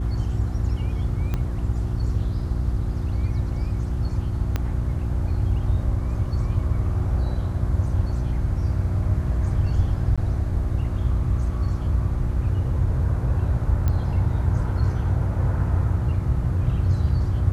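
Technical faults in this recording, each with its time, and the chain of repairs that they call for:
hum 60 Hz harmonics 6 -27 dBFS
1.34 s: pop -14 dBFS
4.56 s: pop -11 dBFS
10.16–10.18 s: dropout 16 ms
13.88 s: pop -13 dBFS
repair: de-click; de-hum 60 Hz, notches 6; interpolate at 10.16 s, 16 ms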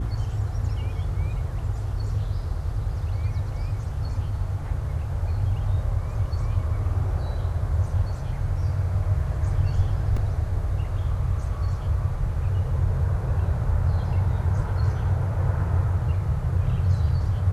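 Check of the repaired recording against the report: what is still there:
1.34 s: pop
4.56 s: pop

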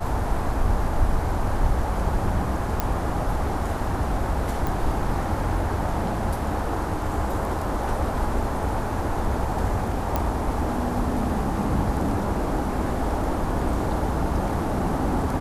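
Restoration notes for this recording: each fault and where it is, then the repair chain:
2.80 s: pop -8 dBFS
4.67 s: pop
10.16 s: pop -10 dBFS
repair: de-click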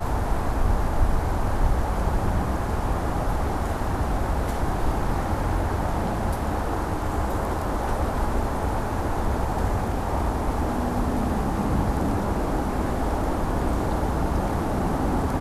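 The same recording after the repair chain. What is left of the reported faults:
nothing left

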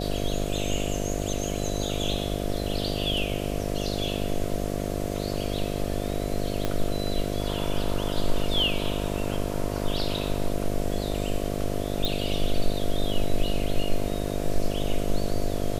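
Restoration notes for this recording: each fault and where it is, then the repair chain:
buzz 50 Hz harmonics 14 -30 dBFS
6.65 s: pop -12 dBFS
12.05 s: pop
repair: de-click; de-hum 50 Hz, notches 14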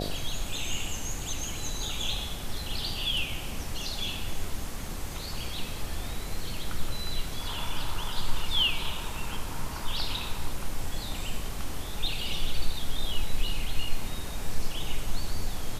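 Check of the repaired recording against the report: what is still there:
6.65 s: pop

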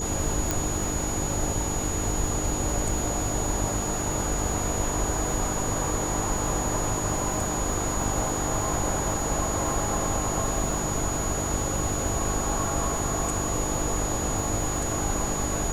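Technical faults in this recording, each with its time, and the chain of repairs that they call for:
buzz 50 Hz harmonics 9 -33 dBFS
crackle 58 per s -33 dBFS
whine 6.8 kHz -31 dBFS
0.51 s: pop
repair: de-click; de-hum 50 Hz, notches 9; band-stop 6.8 kHz, Q 30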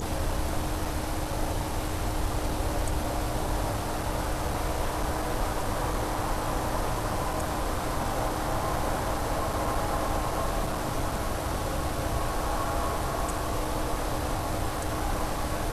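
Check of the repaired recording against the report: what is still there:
0.51 s: pop

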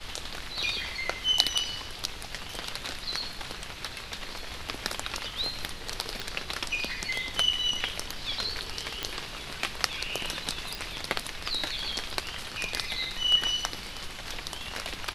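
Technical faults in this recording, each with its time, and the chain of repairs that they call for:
6.20 s: pop
9.03 s: pop -14 dBFS
10.75 s: pop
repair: de-click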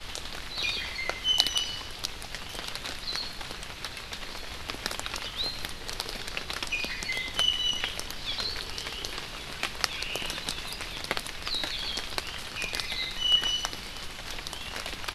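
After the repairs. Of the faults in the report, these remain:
nothing left

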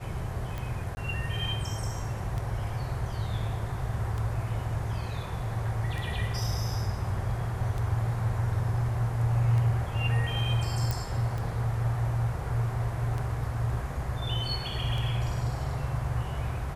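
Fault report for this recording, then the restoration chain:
tick 33 1/3 rpm -22 dBFS
0.95–0.97 s: dropout 20 ms
10.91 s: pop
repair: de-click; interpolate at 0.95 s, 20 ms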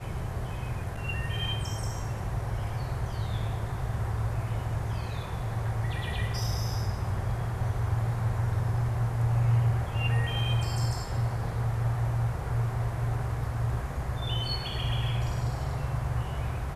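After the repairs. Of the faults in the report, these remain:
nothing left

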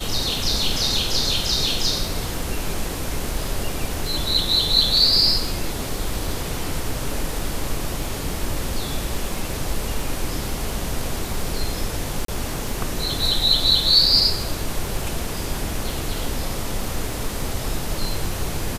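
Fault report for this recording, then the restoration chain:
crackle 23 per s -29 dBFS
12.25–12.28 s: dropout 33 ms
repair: de-click; interpolate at 12.25 s, 33 ms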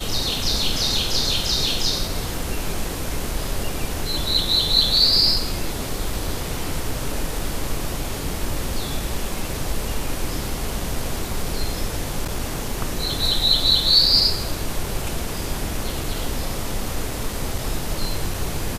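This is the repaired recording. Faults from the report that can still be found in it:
nothing left

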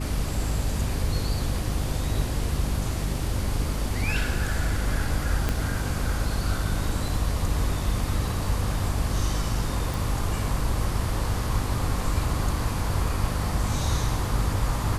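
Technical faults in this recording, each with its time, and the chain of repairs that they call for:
hum 50 Hz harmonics 6 -30 dBFS
5.49 s: pop -11 dBFS
9.94 s: pop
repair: de-click; de-hum 50 Hz, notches 6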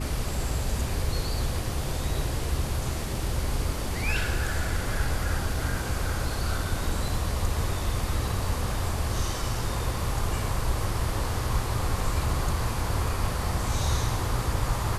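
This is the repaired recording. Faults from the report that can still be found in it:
5.49 s: pop

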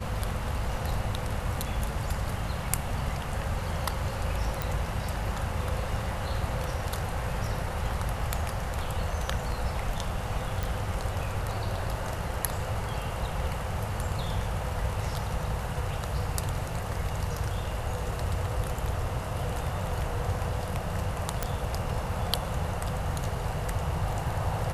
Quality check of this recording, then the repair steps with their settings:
4.62 s: pop
10.63 s: pop
21.43 s: pop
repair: de-click

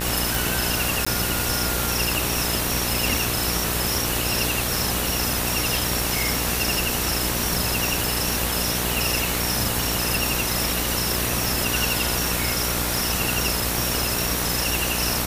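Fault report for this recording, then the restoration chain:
buzz 60 Hz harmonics 32 -29 dBFS
tick 33 1/3 rpm
1.05–1.06 s: dropout 15 ms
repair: de-click; de-hum 60 Hz, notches 32; interpolate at 1.05 s, 15 ms

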